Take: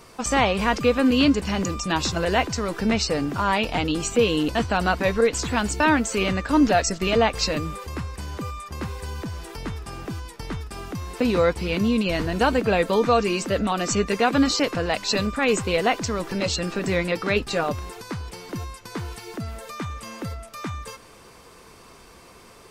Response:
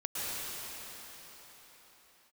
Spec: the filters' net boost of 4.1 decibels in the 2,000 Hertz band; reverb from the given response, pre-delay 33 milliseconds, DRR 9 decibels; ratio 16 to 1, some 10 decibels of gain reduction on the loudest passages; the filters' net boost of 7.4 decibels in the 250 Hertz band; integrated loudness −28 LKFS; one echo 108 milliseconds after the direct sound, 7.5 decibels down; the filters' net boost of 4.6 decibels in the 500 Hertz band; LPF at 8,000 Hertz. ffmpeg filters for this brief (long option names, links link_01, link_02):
-filter_complex "[0:a]lowpass=8000,equalizer=frequency=250:width_type=o:gain=8,equalizer=frequency=500:width_type=o:gain=3,equalizer=frequency=2000:width_type=o:gain=5,acompressor=threshold=-16dB:ratio=16,aecho=1:1:108:0.422,asplit=2[link_01][link_02];[1:a]atrim=start_sample=2205,adelay=33[link_03];[link_02][link_03]afir=irnorm=-1:irlink=0,volume=-15.5dB[link_04];[link_01][link_04]amix=inputs=2:normalize=0,volume=-6dB"